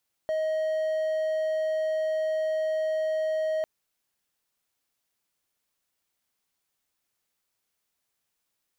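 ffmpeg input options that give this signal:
-f lavfi -i "aevalsrc='0.075*(1-4*abs(mod(629*t+0.25,1)-0.5))':d=3.35:s=44100"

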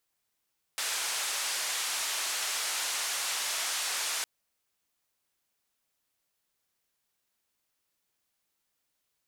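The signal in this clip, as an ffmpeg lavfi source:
-f lavfi -i "anoisesrc=c=white:d=3.46:r=44100:seed=1,highpass=f=770,lowpass=f=8900,volume=-23.4dB"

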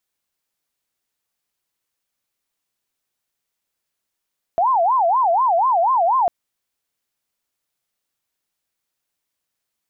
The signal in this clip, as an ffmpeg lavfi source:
-f lavfi -i "aevalsrc='0.211*sin(2*PI*(863*t-197/(2*PI*4.1)*sin(2*PI*4.1*t)))':d=1.7:s=44100"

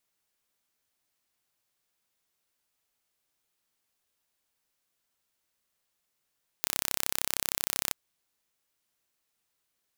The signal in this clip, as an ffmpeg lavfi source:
-f lavfi -i "aevalsrc='0.891*eq(mod(n,1336),0)':d=1.29:s=44100"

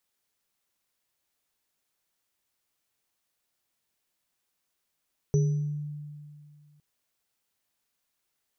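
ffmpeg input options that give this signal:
-f lavfi -i "aevalsrc='0.112*pow(10,-3*t/2.24)*sin(2*PI*148*t)+0.0562*pow(10,-3*t/0.56)*sin(2*PI*413*t)+0.0112*pow(10,-3*t/0.63)*sin(2*PI*5940*t)':d=1.46:s=44100"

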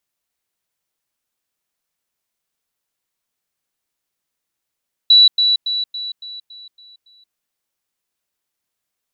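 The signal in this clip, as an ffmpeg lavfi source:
-f lavfi -i "aevalsrc='pow(10,(-5.5-6*floor(t/0.28))/20)*sin(2*PI*3940*t)*clip(min(mod(t,0.28),0.18-mod(t,0.28))/0.005,0,1)':d=2.24:s=44100"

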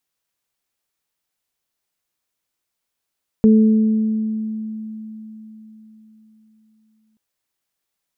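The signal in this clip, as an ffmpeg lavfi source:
-f lavfi -i "aevalsrc='0.422*pow(10,-3*t/4.21)*sin(2*PI*218*t)+0.158*pow(10,-3*t/1.62)*sin(2*PI*436*t)':d=3.73:s=44100"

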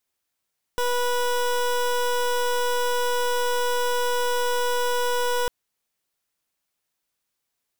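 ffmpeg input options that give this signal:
-f lavfi -i "aevalsrc='0.0708*(2*lt(mod(489*t,1),0.22)-1)':d=4.7:s=44100"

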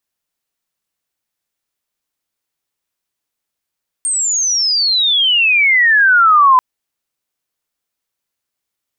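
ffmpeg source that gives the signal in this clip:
-f lavfi -i "aevalsrc='pow(10,(-14+9*t/2.54)/20)*sin(2*PI*8700*2.54/log(1000/8700)*(exp(log(1000/8700)*t/2.54)-1))':d=2.54:s=44100"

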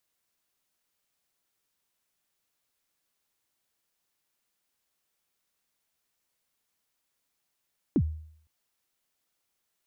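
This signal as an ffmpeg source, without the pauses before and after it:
-f lavfi -i "aevalsrc='0.133*pow(10,-3*t/0.62)*sin(2*PI*(360*0.062/log(78/360)*(exp(log(78/360)*min(t,0.062)/0.062)-1)+78*max(t-0.062,0)))':d=0.51:s=44100"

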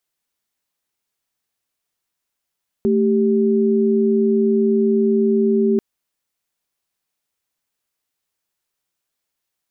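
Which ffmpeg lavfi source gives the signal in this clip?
-f lavfi -i "aevalsrc='0.158*(sin(2*PI*220*t)+sin(2*PI*392*t))':d=2.94:s=44100"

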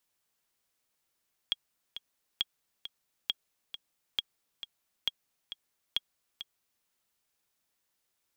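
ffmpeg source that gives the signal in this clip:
-f lavfi -i "aevalsrc='pow(10,(-15-11.5*gte(mod(t,2*60/135),60/135))/20)*sin(2*PI*3290*mod(t,60/135))*exp(-6.91*mod(t,60/135)/0.03)':d=5.33:s=44100"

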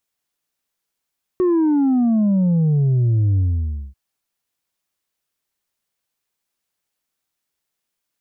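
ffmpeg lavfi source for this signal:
-f lavfi -i "aevalsrc='0.2*clip((2.54-t)/0.57,0,1)*tanh(1.41*sin(2*PI*370*2.54/log(65/370)*(exp(log(65/370)*t/2.54)-1)))/tanh(1.41)':d=2.54:s=44100"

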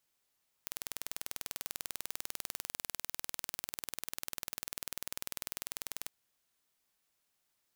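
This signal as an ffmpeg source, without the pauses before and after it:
-f lavfi -i "aevalsrc='0.299*eq(mod(n,2183),0)':d=5.44:s=44100"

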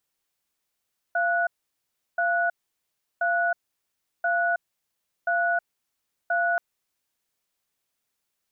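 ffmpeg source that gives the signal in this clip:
-f lavfi -i "aevalsrc='0.0668*(sin(2*PI*690*t)+sin(2*PI*1470*t))*clip(min(mod(t,1.03),0.32-mod(t,1.03))/0.005,0,1)':d=5.43:s=44100"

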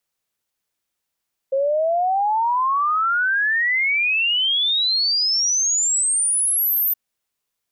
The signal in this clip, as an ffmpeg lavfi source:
-f lavfi -i "aevalsrc='0.15*clip(min(t,5.42-t)/0.01,0,1)*sin(2*PI*530*5.42/log(14000/530)*(exp(log(14000/530)*t/5.42)-1))':d=5.42:s=44100"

